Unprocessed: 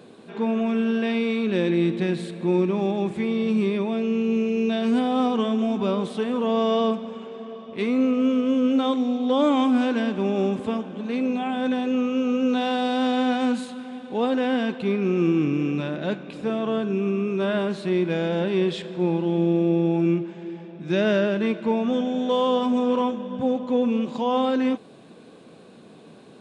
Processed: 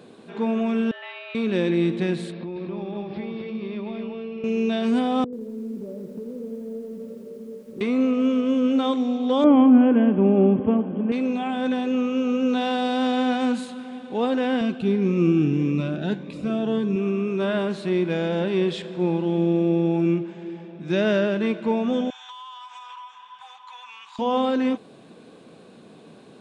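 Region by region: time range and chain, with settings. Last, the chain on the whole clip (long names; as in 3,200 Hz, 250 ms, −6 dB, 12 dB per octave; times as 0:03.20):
0:00.91–0:01.35: high-pass filter 1,100 Hz + high-frequency loss of the air 420 metres + frequency shifter +180 Hz
0:02.32–0:04.44: Butterworth low-pass 5,300 Hz 96 dB per octave + downward compressor 10 to 1, threshold −29 dBFS + single-tap delay 238 ms −4 dB
0:05.24–0:07.81: Chebyshev low-pass filter 590 Hz, order 8 + downward compressor 10 to 1, threshold −31 dBFS + feedback echo at a low word length 85 ms, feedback 80%, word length 9 bits, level −10.5 dB
0:09.44–0:11.12: linear-phase brick-wall low-pass 3,400 Hz + tilt shelving filter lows +8 dB, about 900 Hz
0:14.61–0:16.96: low-shelf EQ 160 Hz +8.5 dB + phaser whose notches keep moving one way rising 1.7 Hz
0:22.10–0:24.19: elliptic high-pass filter 910 Hz + downward compressor 10 to 1, threshold −37 dBFS
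whole clip: no processing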